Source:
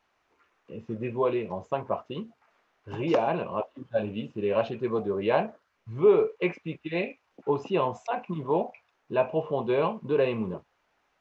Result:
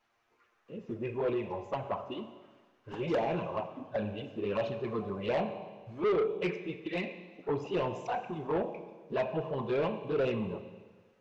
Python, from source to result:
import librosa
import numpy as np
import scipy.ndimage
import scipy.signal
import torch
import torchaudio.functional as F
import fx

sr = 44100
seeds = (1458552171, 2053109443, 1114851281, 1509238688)

y = fx.env_flanger(x, sr, rest_ms=8.7, full_db=-20.0)
y = fx.rev_schroeder(y, sr, rt60_s=1.4, comb_ms=30, drr_db=10.0)
y = 10.0 ** (-24.5 / 20.0) * np.tanh(y / 10.0 ** (-24.5 / 20.0))